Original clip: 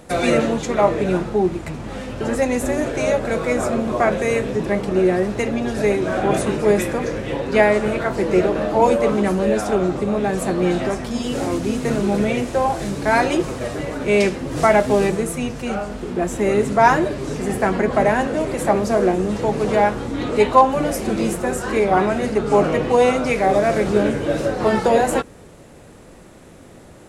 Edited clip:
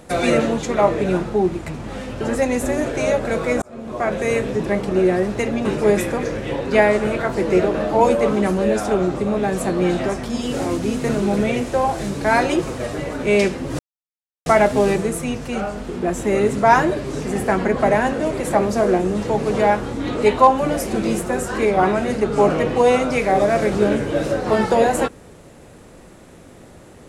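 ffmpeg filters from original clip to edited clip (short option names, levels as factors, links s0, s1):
-filter_complex "[0:a]asplit=4[s0][s1][s2][s3];[s0]atrim=end=3.62,asetpts=PTS-STARTPTS,afade=t=out:st=3.616:d=0.004:c=hsin[s4];[s1]atrim=start=3.62:end=5.652,asetpts=PTS-STARTPTS,afade=t=in:d=0.69[s5];[s2]atrim=start=6.458:end=14.6,asetpts=PTS-STARTPTS,afade=t=out:st=8.138:d=0.004:c=hsin,apad=pad_dur=0.67[s6];[s3]atrim=start=14.6,asetpts=PTS-STARTPTS,afade=t=in:d=0.004:c=hsin[s7];[s4][s5]concat=n=2:v=0:a=1[s8];[s6][s7]concat=n=2:v=0:a=1[s9];[s8][s9]acrossfade=d=0.004:c1=hsin:c2=hsin"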